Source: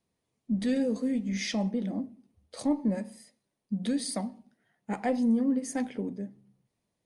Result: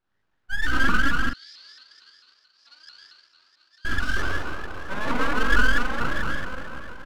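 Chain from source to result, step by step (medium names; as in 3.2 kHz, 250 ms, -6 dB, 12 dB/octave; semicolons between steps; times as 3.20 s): every band turned upside down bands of 1 kHz; distance through air 230 m; delay 724 ms -19 dB; reverberation RT60 3.1 s, pre-delay 5 ms, DRR -8 dB; full-wave rectifier; 1.29–3.85 s: band-pass filter 4.6 kHz, Q 12; doubling 44 ms -7 dB; vibrato with a chosen wave saw up 4.5 Hz, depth 160 cents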